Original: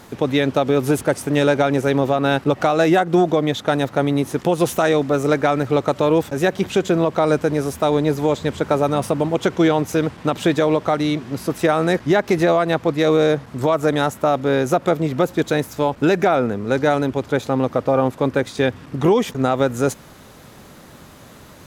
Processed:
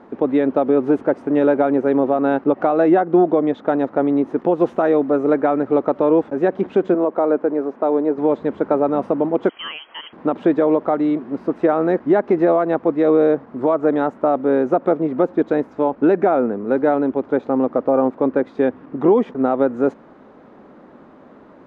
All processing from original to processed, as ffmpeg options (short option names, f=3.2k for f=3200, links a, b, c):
-filter_complex "[0:a]asettb=1/sr,asplit=3[a][b][c];[a]atrim=end=6.944[d];[b]atrim=start=6.94:end=8.18,asetpts=PTS-STARTPTS,afade=t=in:d=0.004:c=qsin,afade=t=out:st=1.236:d=0.004:c=qsin,highpass=270,lowpass=6.6k,highshelf=f=2.7k:g=-10[e];[c]atrim=start=8.176[f];[d][e]acrossfade=d=0.004:c1=hsin:c2=qsin[g];[g][f]acrossfade=d=0.004:c1=qsin:c2=hsin,asettb=1/sr,asplit=3[h][i][j];[h]atrim=end=9.494[k];[i]atrim=start=9.49:end=10.13,asetpts=PTS-STARTPTS,afade=t=in:d=0.004:c=qsin,afade=t=out:st=0.636:d=0.004:c=qsin,highpass=f=240:p=1,lowpass=f=2.9k:t=q:w=0.5098,lowpass=f=2.9k:t=q:w=0.6013,lowpass=f=2.9k:t=q:w=0.9,lowpass=f=2.9k:t=q:w=2.563,afreqshift=-3400[l];[j]atrim=start=10.126[m];[k][l]acrossfade=d=0.004:c1=hsin:c2=qsin[n];[n][m]acrossfade=d=0.004:c1=qsin:c2=hsin,lowpass=1.2k,lowshelf=f=170:t=q:w=1.5:g=-13"